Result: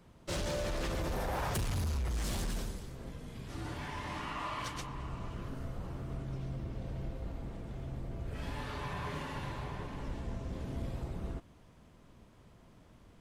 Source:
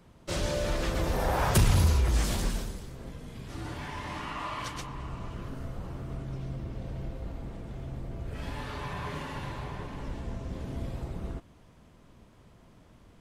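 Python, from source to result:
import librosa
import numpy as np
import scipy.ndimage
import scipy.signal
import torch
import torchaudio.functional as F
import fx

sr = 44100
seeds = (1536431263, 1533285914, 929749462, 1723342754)

p1 = fx.over_compress(x, sr, threshold_db=-30.0, ratio=-0.5)
p2 = x + F.gain(torch.from_numpy(p1), -3.0).numpy()
p3 = np.clip(p2, -10.0 ** (-22.0 / 20.0), 10.0 ** (-22.0 / 20.0))
y = F.gain(torch.from_numpy(p3), -8.5).numpy()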